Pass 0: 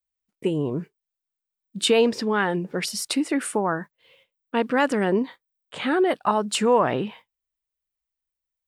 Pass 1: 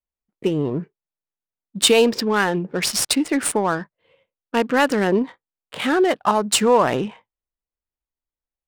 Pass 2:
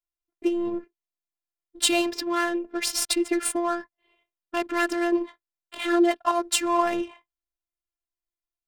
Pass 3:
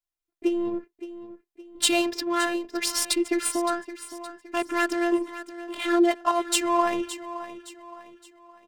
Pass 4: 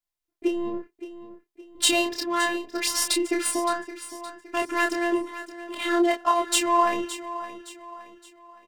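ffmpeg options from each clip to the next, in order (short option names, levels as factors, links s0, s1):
-af "aemphasis=mode=production:type=50fm,adynamicsmooth=sensitivity=5.5:basefreq=1300,volume=1.5"
-af "afftfilt=real='hypot(re,im)*cos(PI*b)':imag='0':win_size=512:overlap=0.75,volume=0.841"
-af "aecho=1:1:567|1134|1701|2268:0.211|0.0845|0.0338|0.0135"
-filter_complex "[0:a]asplit=2[s0][s1];[s1]adelay=28,volume=0.631[s2];[s0][s2]amix=inputs=2:normalize=0"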